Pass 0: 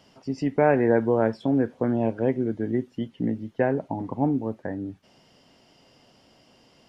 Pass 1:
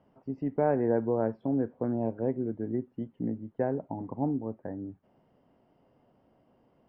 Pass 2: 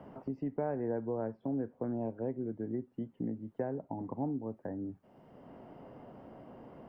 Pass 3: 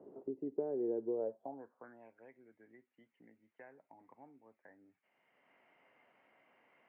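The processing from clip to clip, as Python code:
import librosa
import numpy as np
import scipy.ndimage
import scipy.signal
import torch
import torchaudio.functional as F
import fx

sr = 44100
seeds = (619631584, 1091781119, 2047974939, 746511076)

y1 = scipy.signal.sosfilt(scipy.signal.butter(2, 1100.0, 'lowpass', fs=sr, output='sos'), x)
y1 = F.gain(torch.from_numpy(y1), -6.0).numpy()
y2 = fx.band_squash(y1, sr, depth_pct=70)
y2 = F.gain(torch.from_numpy(y2), -6.0).numpy()
y3 = fx.filter_sweep_bandpass(y2, sr, from_hz=390.0, to_hz=2200.0, start_s=1.12, end_s=2.06, q=4.7)
y3 = F.gain(torch.from_numpy(y3), 4.5).numpy()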